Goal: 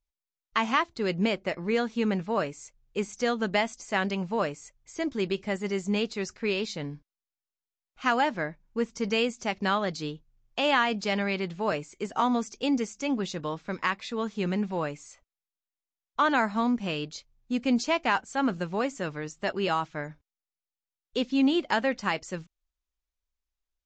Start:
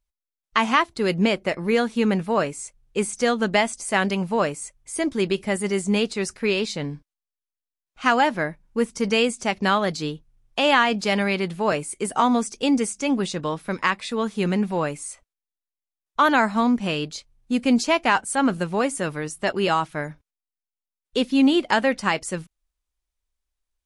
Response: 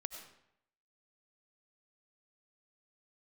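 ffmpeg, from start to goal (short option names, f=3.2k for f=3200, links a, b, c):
-af "aresample=16000,aresample=44100,volume=-6dB"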